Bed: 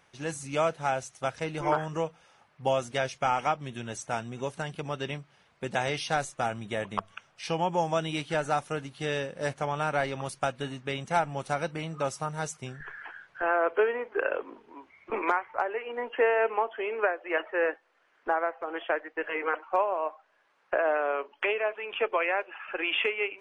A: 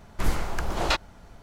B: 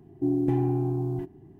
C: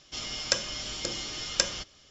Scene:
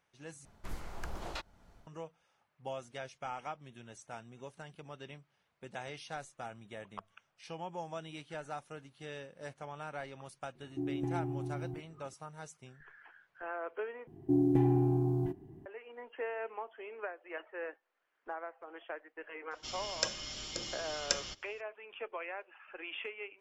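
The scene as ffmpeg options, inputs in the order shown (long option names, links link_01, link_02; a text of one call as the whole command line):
ffmpeg -i bed.wav -i cue0.wav -i cue1.wav -i cue2.wav -filter_complex "[2:a]asplit=2[link_01][link_02];[0:a]volume=-14.5dB[link_03];[1:a]tremolo=f=1.6:d=0.49[link_04];[link_03]asplit=3[link_05][link_06][link_07];[link_05]atrim=end=0.454[link_08];[link_04]atrim=end=1.42,asetpts=PTS-STARTPTS,volume=-12dB[link_09];[link_06]atrim=start=1.866:end=14.074[link_10];[link_02]atrim=end=1.59,asetpts=PTS-STARTPTS,volume=-2.5dB[link_11];[link_07]atrim=start=15.656[link_12];[link_01]atrim=end=1.59,asetpts=PTS-STARTPTS,volume=-11.5dB,afade=type=in:duration=0.004:curve=hsin,afade=type=out:start_time=1.586:duration=0.004:curve=hsin,adelay=10550[link_13];[3:a]atrim=end=2.1,asetpts=PTS-STARTPTS,volume=-7dB,afade=type=in:duration=0.004:curve=hsin,afade=type=out:start_time=2.096:duration=0.004:curve=hsin,adelay=19510[link_14];[link_08][link_09]acrossfade=duration=0.004:curve1=hsin:curve2=hsin[link_15];[link_15][link_10]acrossfade=duration=0.004:curve1=hsin:curve2=hsin[link_16];[link_16][link_11]acrossfade=duration=0.004:curve1=hsin:curve2=hsin[link_17];[link_17][link_12]acrossfade=duration=0.004:curve1=hsin:curve2=hsin[link_18];[link_18][link_13][link_14]amix=inputs=3:normalize=0" out.wav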